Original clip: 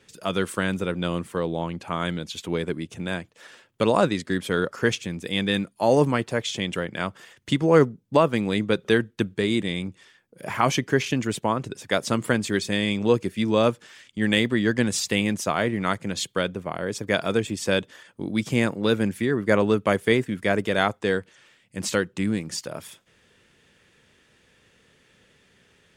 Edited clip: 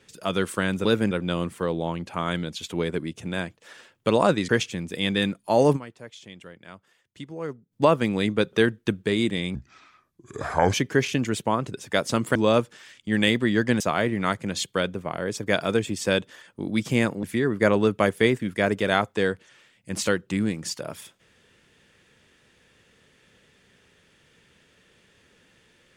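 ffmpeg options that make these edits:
ffmpeg -i in.wav -filter_complex "[0:a]asplit=11[link_01][link_02][link_03][link_04][link_05][link_06][link_07][link_08][link_09][link_10][link_11];[link_01]atrim=end=0.852[link_12];[link_02]atrim=start=18.838:end=19.102[link_13];[link_03]atrim=start=0.848:end=4.232[link_14];[link_04]atrim=start=4.808:end=6.21,asetpts=PTS-STARTPTS,afade=type=out:start_time=1.272:duration=0.13:curve=exp:silence=0.149624[link_15];[link_05]atrim=start=6.21:end=7.92,asetpts=PTS-STARTPTS,volume=-16.5dB[link_16];[link_06]atrim=start=7.92:end=9.874,asetpts=PTS-STARTPTS,afade=type=in:duration=0.13:curve=exp:silence=0.149624[link_17];[link_07]atrim=start=9.87:end=10.71,asetpts=PTS-STARTPTS,asetrate=31311,aresample=44100[link_18];[link_08]atrim=start=10.706:end=12.332[link_19];[link_09]atrim=start=13.448:end=14.902[link_20];[link_10]atrim=start=15.408:end=18.842[link_21];[link_11]atrim=start=19.098[link_22];[link_12][link_13]acrossfade=duration=0.004:curve1=hsin:curve2=hsin[link_23];[link_23][link_14]acrossfade=duration=0.004:curve1=hsin:curve2=hsin[link_24];[link_15][link_16][link_17]concat=n=3:v=0:a=1[link_25];[link_24][link_25]acrossfade=duration=0.004:curve1=hsin:curve2=hsin[link_26];[link_26][link_18]acrossfade=duration=0.004:curve1=hsin:curve2=hsin[link_27];[link_27][link_19]acrossfade=duration=0.004:curve1=hsin:curve2=hsin[link_28];[link_28][link_20]acrossfade=duration=0.004:curve1=hsin:curve2=hsin[link_29];[link_29][link_21]acrossfade=duration=0.004:curve1=hsin:curve2=hsin[link_30];[link_30][link_22]acrossfade=duration=0.004:curve1=hsin:curve2=hsin" out.wav

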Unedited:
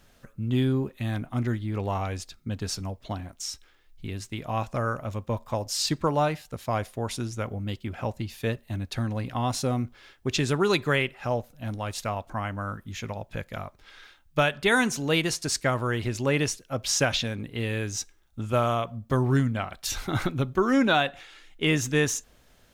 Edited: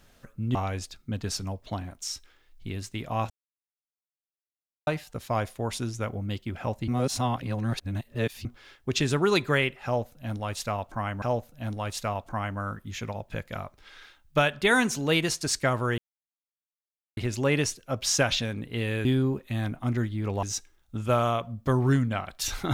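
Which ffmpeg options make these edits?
ffmpeg -i in.wav -filter_complex "[0:a]asplit=10[link_01][link_02][link_03][link_04][link_05][link_06][link_07][link_08][link_09][link_10];[link_01]atrim=end=0.552[link_11];[link_02]atrim=start=1.928:end=4.68,asetpts=PTS-STARTPTS,afade=type=out:start_time=2.748:duration=0.004:curve=hsin[link_12];[link_03]atrim=start=4.68:end=6.25,asetpts=PTS-STARTPTS,volume=0[link_13];[link_04]atrim=start=6.25:end=8.262,asetpts=PTS-STARTPTS,afade=type=in:duration=0.004:curve=hsin[link_14];[link_05]atrim=start=8.258:end=9.832,asetpts=PTS-STARTPTS,areverse[link_15];[link_06]atrim=start=9.828:end=12.602[link_16];[link_07]atrim=start=11.228:end=15.99,asetpts=PTS-STARTPTS,afade=type=out:start_time=4.758:duration=0.004:curve=hsin,apad=pad_dur=1.19[link_17];[link_08]atrim=start=15.99:end=17.872,asetpts=PTS-STARTPTS,afade=type=in:duration=0.004:curve=hsin[link_18];[link_09]atrim=start=0.548:end=1.932[link_19];[link_10]atrim=start=17.868[link_20];[link_12][link_13][link_14]concat=n=3:v=0:a=1[link_21];[link_11][link_21]acrossfade=duration=0.004:curve1=hsin:curve2=hsin[link_22];[link_22][link_15]acrossfade=duration=0.004:curve1=hsin:curve2=hsin[link_23];[link_23][link_16]acrossfade=duration=0.004:curve1=hsin:curve2=hsin[link_24];[link_17][link_18]concat=n=2:v=0:a=1[link_25];[link_24][link_25]acrossfade=duration=0.004:curve1=hsin:curve2=hsin[link_26];[link_26][link_19]acrossfade=duration=0.004:curve1=hsin:curve2=hsin[link_27];[link_27][link_20]acrossfade=duration=0.004:curve1=hsin:curve2=hsin" out.wav

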